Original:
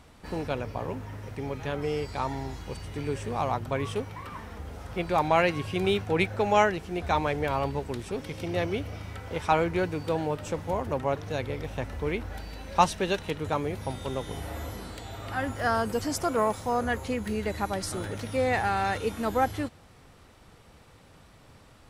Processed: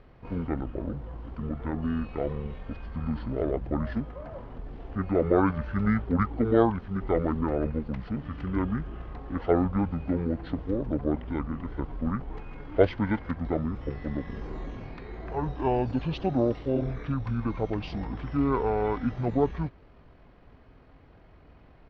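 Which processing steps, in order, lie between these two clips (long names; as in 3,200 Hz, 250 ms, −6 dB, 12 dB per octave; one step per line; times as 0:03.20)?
healed spectral selection 0:16.78–0:17.02, 310–4,300 Hz both
pitch shifter −10.5 semitones
high-frequency loss of the air 350 metres
level +1.5 dB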